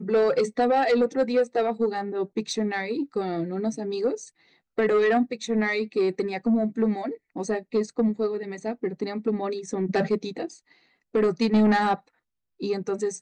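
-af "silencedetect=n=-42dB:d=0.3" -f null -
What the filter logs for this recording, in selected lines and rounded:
silence_start: 4.28
silence_end: 4.78 | silence_duration: 0.49
silence_start: 10.56
silence_end: 11.14 | silence_duration: 0.58
silence_start: 11.99
silence_end: 12.60 | silence_duration: 0.61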